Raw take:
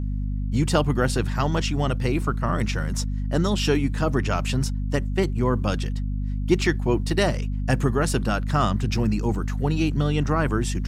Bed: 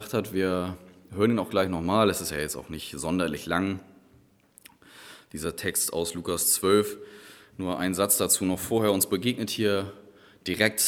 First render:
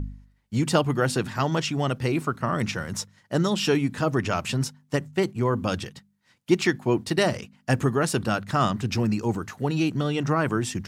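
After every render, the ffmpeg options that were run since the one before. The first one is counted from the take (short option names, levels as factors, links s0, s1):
-af "bandreject=f=50:t=h:w=4,bandreject=f=100:t=h:w=4,bandreject=f=150:t=h:w=4,bandreject=f=200:t=h:w=4,bandreject=f=250:t=h:w=4"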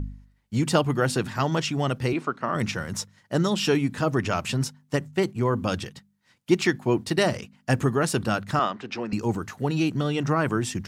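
-filter_complex "[0:a]asettb=1/sr,asplit=3[s0][s1][s2];[s0]atrim=end=2.134[s3];[s1]atrim=start=2.13:end=2.55,asetpts=PTS-STARTPTS,afade=t=in:d=0.004:c=qsin,afade=t=out:st=0.416:d=0.004:c=qsin,highpass=240,lowpass=4900[s4];[s2]atrim=start=2.546[s5];[s3][s4]acrossfade=d=0.004:c1=hsin:c2=qsin[s6];[s6][s5]acrossfade=d=0.004:c1=qsin:c2=hsin,asettb=1/sr,asplit=3[s7][s8][s9];[s7]atrim=end=8.594[s10];[s8]atrim=start=8.59:end=9.13,asetpts=PTS-STARTPTS,afade=t=in:d=0.004:c=qsin,afade=t=out:st=0.536:d=0.004:c=qsin,highpass=370,lowpass=3500[s11];[s9]atrim=start=9.126[s12];[s10][s11]acrossfade=d=0.004:c1=hsin:c2=qsin[s13];[s13][s12]acrossfade=d=0.004:c1=qsin:c2=hsin"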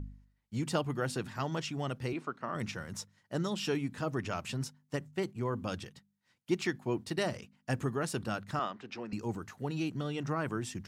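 -af "volume=0.299"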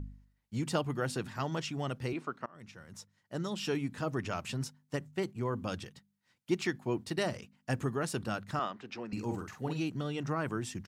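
-filter_complex "[0:a]asplit=3[s0][s1][s2];[s0]afade=t=out:st=9.14:d=0.02[s3];[s1]asplit=2[s4][s5];[s5]adelay=46,volume=0.562[s6];[s4][s6]amix=inputs=2:normalize=0,afade=t=in:st=9.14:d=0.02,afade=t=out:st=9.79:d=0.02[s7];[s2]afade=t=in:st=9.79:d=0.02[s8];[s3][s7][s8]amix=inputs=3:normalize=0,asplit=2[s9][s10];[s9]atrim=end=2.46,asetpts=PTS-STARTPTS,afade=t=out:st=2.456:d=0.004:c=hsin:silence=0.0707946[s11];[s10]atrim=start=2.46,asetpts=PTS-STARTPTS,afade=t=in:d=1.37:silence=0.0707946[s12];[s11][s12]concat=n=2:v=0:a=1"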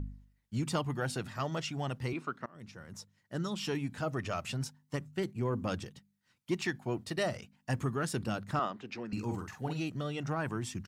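-af "aphaser=in_gain=1:out_gain=1:delay=1.7:decay=0.31:speed=0.35:type=triangular,asoftclip=type=tanh:threshold=0.106"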